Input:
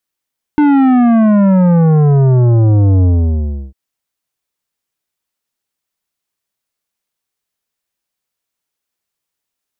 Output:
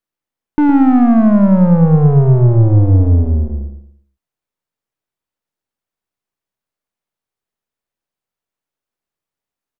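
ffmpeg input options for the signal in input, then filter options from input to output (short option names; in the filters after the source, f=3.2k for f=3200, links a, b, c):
-f lavfi -i "aevalsrc='0.422*clip((3.15-t)/0.7,0,1)*tanh(3.76*sin(2*PI*300*3.15/log(65/300)*(exp(log(65/300)*t/3.15)-1)))/tanh(3.76)':d=3.15:s=44100"
-filter_complex "[0:a]aeval=exprs='if(lt(val(0),0),0.708*val(0),val(0))':c=same,highshelf=f=2.2k:g=-10.5,asplit=2[a][b];[b]adelay=113,lowpass=f=2.4k:p=1,volume=-7dB,asplit=2[c][d];[d]adelay=113,lowpass=f=2.4k:p=1,volume=0.33,asplit=2[e][f];[f]adelay=113,lowpass=f=2.4k:p=1,volume=0.33,asplit=2[g][h];[h]adelay=113,lowpass=f=2.4k:p=1,volume=0.33[i];[c][e][g][i]amix=inputs=4:normalize=0[j];[a][j]amix=inputs=2:normalize=0"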